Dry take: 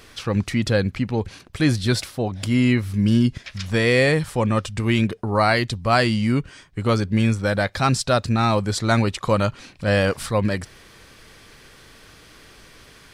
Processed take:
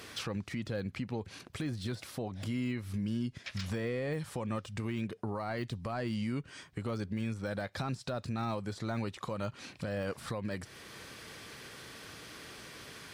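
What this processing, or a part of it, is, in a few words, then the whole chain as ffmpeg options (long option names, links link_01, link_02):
podcast mastering chain: -af "highpass=98,deesser=0.8,acompressor=threshold=-29dB:ratio=2.5,alimiter=level_in=2.5dB:limit=-24dB:level=0:latency=1:release=440,volume=-2.5dB" -ar 48000 -c:a libmp3lame -b:a 96k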